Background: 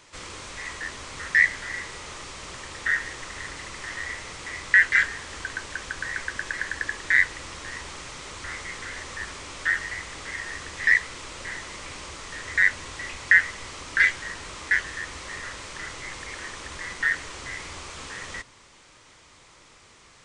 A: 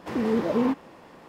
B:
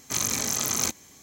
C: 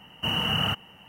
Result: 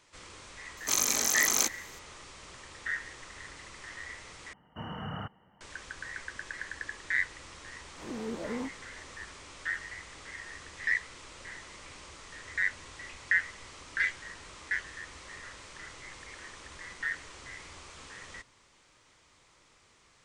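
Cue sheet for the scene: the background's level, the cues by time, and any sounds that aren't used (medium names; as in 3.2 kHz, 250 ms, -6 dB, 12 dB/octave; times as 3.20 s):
background -10 dB
0.77 s: add B -0.5 dB + high-pass 320 Hz
4.53 s: replace with C -9 dB + Savitzky-Golay filter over 41 samples
7.95 s: add A -13.5 dB + reverse spectral sustain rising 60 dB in 0.30 s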